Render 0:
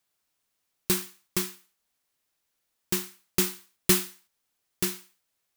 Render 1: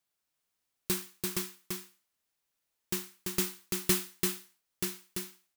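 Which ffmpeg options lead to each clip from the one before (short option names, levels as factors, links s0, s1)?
-af "aecho=1:1:339:0.668,volume=0.501"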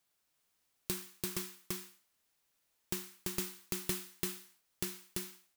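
-af "acompressor=threshold=0.00794:ratio=3,volume=1.68"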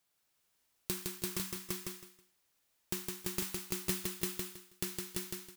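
-af "aecho=1:1:161|322|483:0.668|0.154|0.0354"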